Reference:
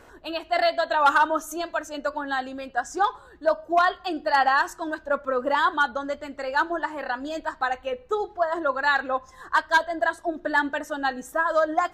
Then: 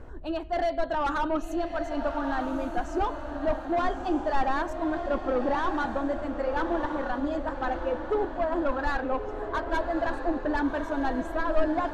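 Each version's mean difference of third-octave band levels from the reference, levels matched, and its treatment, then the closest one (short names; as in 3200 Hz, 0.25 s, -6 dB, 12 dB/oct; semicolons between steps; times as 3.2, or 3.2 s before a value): 9.0 dB: soft clip -22 dBFS, distortion -9 dB; tilt -4 dB/oct; diffused feedback echo 1.223 s, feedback 45%, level -7 dB; gain -2.5 dB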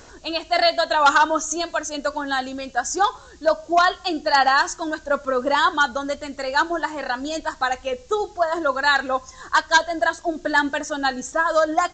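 3.0 dB: tone controls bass +4 dB, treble +13 dB; added noise violet -46 dBFS; downsampling 16000 Hz; gain +3 dB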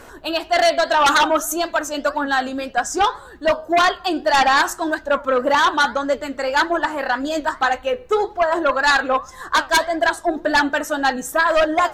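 4.5 dB: flange 1.8 Hz, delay 3.3 ms, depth 5.5 ms, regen +81%; sine folder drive 9 dB, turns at -11 dBFS; high shelf 5700 Hz +7 dB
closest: second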